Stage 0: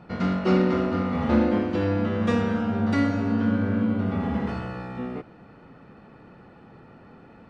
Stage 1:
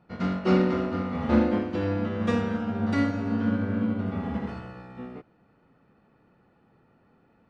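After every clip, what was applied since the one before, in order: upward expansion 1.5:1, over -44 dBFS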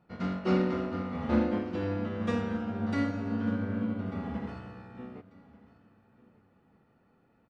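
feedback delay 1192 ms, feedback 23%, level -21 dB; trim -5 dB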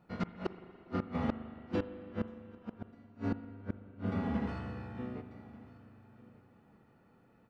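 inverted gate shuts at -23 dBFS, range -37 dB; spring tank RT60 3.1 s, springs 40/58 ms, chirp 55 ms, DRR 11 dB; trim +1.5 dB

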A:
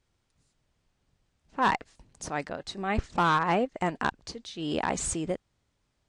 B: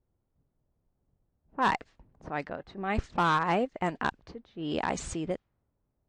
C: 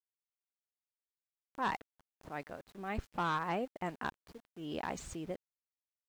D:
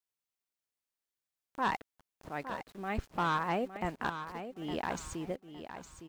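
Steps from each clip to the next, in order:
level-controlled noise filter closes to 710 Hz, open at -23 dBFS; trim -1.5 dB
small samples zeroed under -46.5 dBFS; upward compressor, threshold -45 dBFS; trim -8.5 dB
feedback delay 861 ms, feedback 26%, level -10 dB; trim +3 dB

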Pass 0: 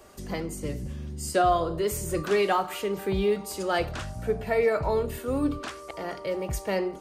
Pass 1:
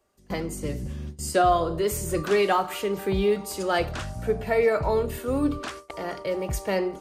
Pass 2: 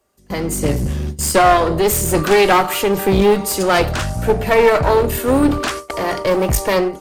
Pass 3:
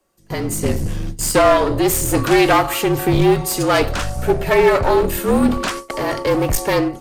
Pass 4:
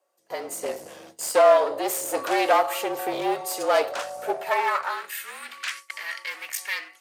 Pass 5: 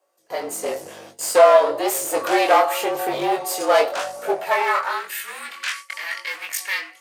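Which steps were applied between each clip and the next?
gate with hold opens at -28 dBFS; trim +2 dB
treble shelf 10 kHz +7 dB; level rider gain up to 11 dB; one-sided clip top -22 dBFS; trim +4 dB
frequency shift -44 Hz; trim -1 dB
high-pass sweep 590 Hz -> 2 kHz, 4.28–5.21 s; trim -9 dB
chorus 0.95 Hz, delay 19.5 ms, depth 5.3 ms; trim +7.5 dB

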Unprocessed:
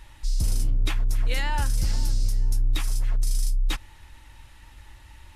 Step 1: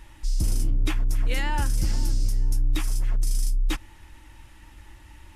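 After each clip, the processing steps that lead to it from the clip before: graphic EQ with 31 bands 200 Hz +5 dB, 315 Hz +9 dB, 4 kHz -5 dB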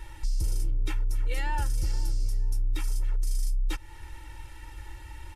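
comb 2.2 ms, depth 100%; compression 2.5:1, threshold -28 dBFS, peak gain reduction 11 dB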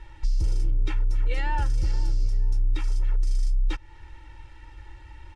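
distance through air 110 m; upward expansion 1.5:1, over -36 dBFS; trim +4.5 dB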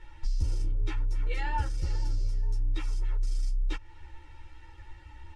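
three-phase chorus

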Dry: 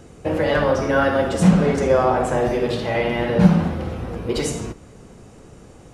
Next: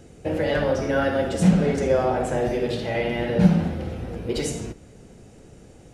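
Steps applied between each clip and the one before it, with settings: peaking EQ 1.1 kHz -9 dB 0.56 oct; trim -3 dB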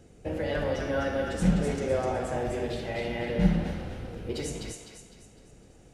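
octave divider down 2 oct, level -5 dB; thinning echo 253 ms, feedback 43%, high-pass 970 Hz, level -3 dB; trim -7.5 dB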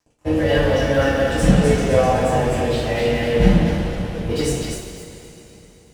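crossover distortion -47 dBFS; two-slope reverb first 0.3 s, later 3.7 s, from -18 dB, DRR -7.5 dB; trim +4.5 dB

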